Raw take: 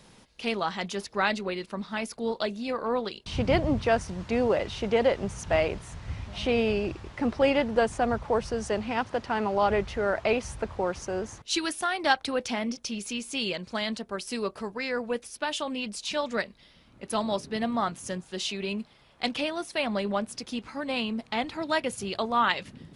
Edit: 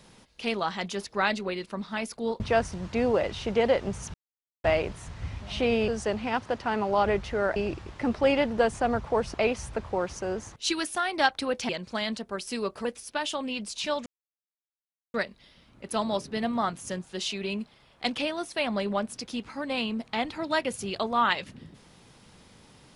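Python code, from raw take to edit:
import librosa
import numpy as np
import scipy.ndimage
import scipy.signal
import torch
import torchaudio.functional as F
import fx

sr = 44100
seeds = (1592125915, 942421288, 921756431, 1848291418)

y = fx.edit(x, sr, fx.cut(start_s=2.4, length_s=1.36),
    fx.insert_silence(at_s=5.5, length_s=0.5),
    fx.move(start_s=8.52, length_s=1.68, to_s=6.74),
    fx.cut(start_s=12.55, length_s=0.94),
    fx.cut(start_s=14.65, length_s=0.47),
    fx.insert_silence(at_s=16.33, length_s=1.08), tone=tone)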